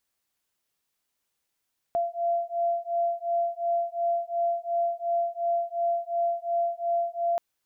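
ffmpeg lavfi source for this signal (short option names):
-f lavfi -i "aevalsrc='0.0422*(sin(2*PI*684*t)+sin(2*PI*686.8*t))':d=5.43:s=44100"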